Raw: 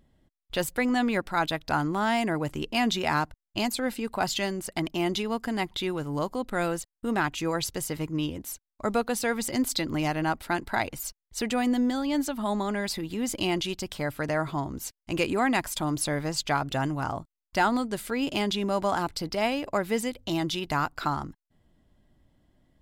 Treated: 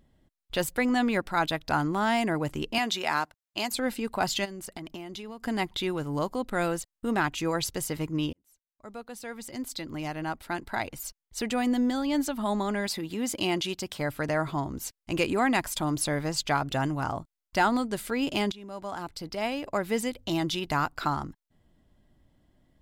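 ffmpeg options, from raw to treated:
-filter_complex "[0:a]asettb=1/sr,asplit=3[s0][s1][s2];[s0]atrim=end=2.784[s3];[s1]atrim=start=2.78:end=3.71,asetpts=PTS-STARTPTS,afade=t=in:d=0.004:c=qsin,afade=t=out:st=0.926:d=0.004:c=qsin,highpass=f=560:p=1[s4];[s2]atrim=start=3.706[s5];[s3][s4]acrossfade=d=0.004:c1=hsin:c2=qsin[s6];[s6][s5]acrossfade=d=0.004:c1=qsin:c2=hsin,asplit=3[s7][s8][s9];[s7]afade=t=out:st=4.44:d=0.02[s10];[s8]acompressor=threshold=0.0178:ratio=16:attack=3.2:release=140:knee=1:detection=peak,afade=t=in:st=4.44:d=0.02,afade=t=out:st=5.44:d=0.02[s11];[s9]afade=t=in:st=5.44:d=0.02[s12];[s10][s11][s12]amix=inputs=3:normalize=0,asettb=1/sr,asplit=3[s13][s14][s15];[s13]atrim=end=12.874[s16];[s14]atrim=start=12.87:end=14,asetpts=PTS-STARTPTS,afade=t=in:d=0.004:c=qsin,afade=t=out:st=1.126:d=0.004:c=qsin,highpass=f=130:p=1[s17];[s15]atrim=start=13.996[s18];[s16][s17]acrossfade=d=0.004:c1=hsin:c2=qsin[s19];[s19][s18]acrossfade=d=0.004:c1=qsin:c2=hsin,asplit=3[s20][s21][s22];[s20]atrim=end=8.33,asetpts=PTS-STARTPTS,afade=t=out:st=8.326:d=0.004:c=hsin[s23];[s21]atrim=start=8.33:end=18.52,asetpts=PTS-STARTPTS,afade=t=in:d=3.72,afade=t=out:st=10.186:d=0.004:c=hsin:silence=0.112202[s24];[s22]atrim=start=18.52,asetpts=PTS-STARTPTS,afade=t=in:d=1.57:silence=0.112202[s25];[s23][s24][s25]concat=n=3:v=0:a=1"

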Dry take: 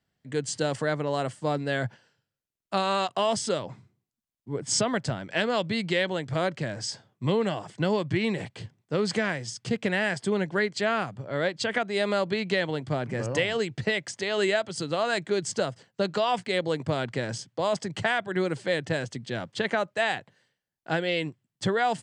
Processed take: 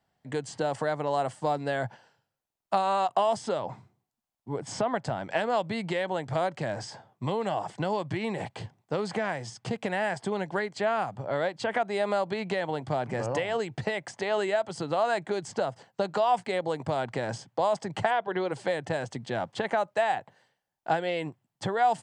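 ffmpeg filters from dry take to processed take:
-filter_complex "[0:a]asplit=3[s0][s1][s2];[s0]afade=t=out:st=18.1:d=0.02[s3];[s1]highpass=160,equalizer=f=450:t=q:w=4:g=9,equalizer=f=1000:t=q:w=4:g=5,equalizer=f=3100:t=q:w=4:g=5,lowpass=f=5000:w=0.5412,lowpass=f=5000:w=1.3066,afade=t=in:st=18.1:d=0.02,afade=t=out:st=18.51:d=0.02[s4];[s2]afade=t=in:st=18.51:d=0.02[s5];[s3][s4][s5]amix=inputs=3:normalize=0,acrossover=split=2800|7300[s6][s7][s8];[s6]acompressor=threshold=0.0316:ratio=4[s9];[s7]acompressor=threshold=0.00398:ratio=4[s10];[s8]acompressor=threshold=0.00251:ratio=4[s11];[s9][s10][s11]amix=inputs=3:normalize=0,equalizer=f=810:w=1.5:g=12"

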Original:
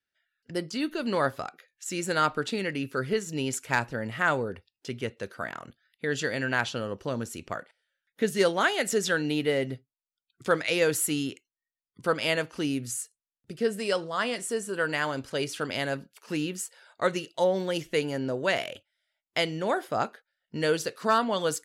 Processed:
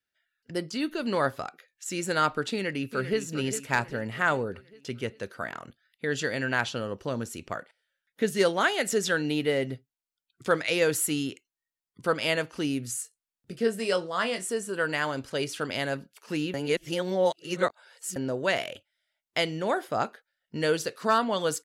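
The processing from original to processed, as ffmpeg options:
-filter_complex "[0:a]asplit=2[s0][s1];[s1]afade=t=in:st=2.52:d=0.01,afade=t=out:st=3.2:d=0.01,aecho=0:1:400|800|1200|1600|2000|2400:0.298538|0.164196|0.0903078|0.0496693|0.0273181|0.015025[s2];[s0][s2]amix=inputs=2:normalize=0,asettb=1/sr,asplit=3[s3][s4][s5];[s3]atrim=end=13.024[s6];[s4]atrim=start=13.02:end=14.5,asetpts=PTS-STARTPTS,afade=t=in:d=0.004:c=qsin,afade=t=out:st=1.476:d=0.004:c=qsin,asplit=2[s7][s8];[s8]adelay=22,volume=0.355[s9];[s7][s9]amix=inputs=2:normalize=0,atrim=end_sample=65268[s10];[s5]atrim=start=14.496[s11];[s6][s10]acrossfade=d=0.004:c1=hsin:c2=qsin[s12];[s12][s11]acrossfade=d=0.004:c1=qsin:c2=hsin,asplit=3[s13][s14][s15];[s13]atrim=end=16.542[s16];[s14]atrim=start=16.538:end=18.162,asetpts=PTS-STARTPTS,areverse[s17];[s15]atrim=start=18.158[s18];[s16][s17]acrossfade=d=0.004:c1=hsin:c2=hsin[s19];[s19][s18]acrossfade=d=0.004:c1=hsin:c2=hsin"

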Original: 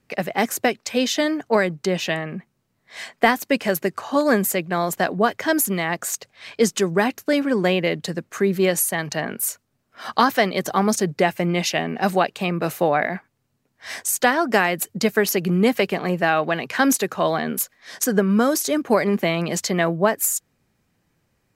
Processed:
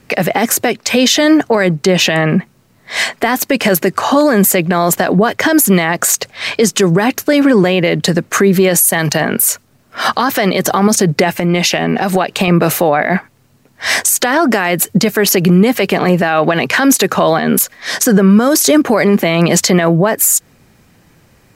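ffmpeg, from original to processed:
-filter_complex "[0:a]asettb=1/sr,asplit=3[s0][s1][s2];[s0]atrim=end=8.744[s3];[s1]atrim=start=8.74:end=9.28,asetpts=PTS-STARTPTS,afade=t=in:d=0.004:c=qsin,afade=t=out:st=0.536:d=0.004:c=qsin,highshelf=f=6800:g=9[s4];[s2]atrim=start=9.276[s5];[s3][s4]acrossfade=d=0.004:c1=hsin:c2=qsin[s6];[s6][s5]acrossfade=d=0.004:c1=qsin:c2=hsin,asettb=1/sr,asplit=3[s7][s8][s9];[s7]atrim=end=11.374[s10];[s8]atrim=start=11.37:end=12.48,asetpts=PTS-STARTPTS,afade=t=in:d=0.004:c=qsin,afade=t=out:st=1.106:d=0.004:c=qsin,acompressor=threshold=0.0447:ratio=12:attack=3.2:release=140:knee=1:detection=peak[s11];[s9]atrim=start=12.476[s12];[s10][s11]acrossfade=d=0.004:c1=hsin:c2=qsin[s13];[s13][s12]acrossfade=d=0.004:c1=qsin:c2=hsin,acompressor=threshold=0.0631:ratio=2,alimiter=level_in=10.6:limit=0.891:release=50:level=0:latency=1,volume=0.891"

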